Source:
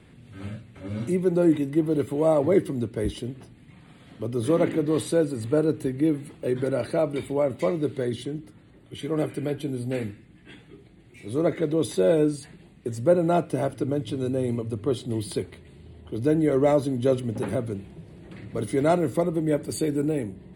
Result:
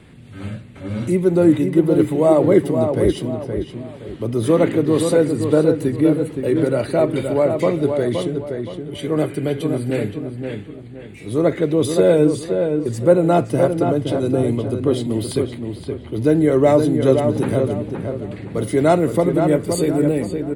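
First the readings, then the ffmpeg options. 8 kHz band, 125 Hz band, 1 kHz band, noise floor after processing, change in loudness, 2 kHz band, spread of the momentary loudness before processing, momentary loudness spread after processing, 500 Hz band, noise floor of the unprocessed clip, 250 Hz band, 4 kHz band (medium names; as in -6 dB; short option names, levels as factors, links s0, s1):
+6.5 dB, +7.5 dB, +7.5 dB, -37 dBFS, +7.0 dB, +7.5 dB, 15 LU, 14 LU, +7.5 dB, -52 dBFS, +7.5 dB, +7.0 dB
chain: -filter_complex "[0:a]asplit=2[s0][s1];[s1]adelay=520,lowpass=f=2500:p=1,volume=0.531,asplit=2[s2][s3];[s3]adelay=520,lowpass=f=2500:p=1,volume=0.35,asplit=2[s4][s5];[s5]adelay=520,lowpass=f=2500:p=1,volume=0.35,asplit=2[s6][s7];[s7]adelay=520,lowpass=f=2500:p=1,volume=0.35[s8];[s0][s2][s4][s6][s8]amix=inputs=5:normalize=0,volume=2.11"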